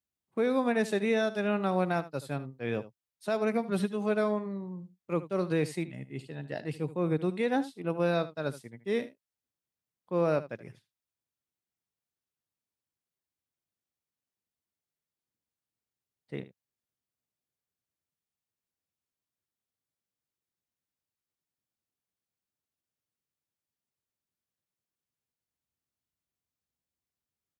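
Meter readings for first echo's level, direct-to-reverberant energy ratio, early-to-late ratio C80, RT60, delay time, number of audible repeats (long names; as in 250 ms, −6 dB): −15.5 dB, no reverb audible, no reverb audible, no reverb audible, 76 ms, 1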